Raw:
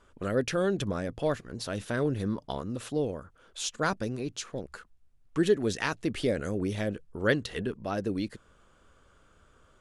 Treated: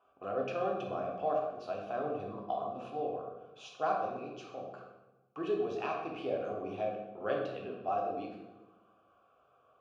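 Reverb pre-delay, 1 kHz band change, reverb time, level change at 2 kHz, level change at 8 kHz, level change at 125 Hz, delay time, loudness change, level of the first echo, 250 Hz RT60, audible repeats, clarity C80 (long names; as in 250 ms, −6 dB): 3 ms, +3.0 dB, 1.1 s, −12.0 dB, below −20 dB, −16.0 dB, no echo audible, −5.5 dB, no echo audible, 1.5 s, no echo audible, 5.5 dB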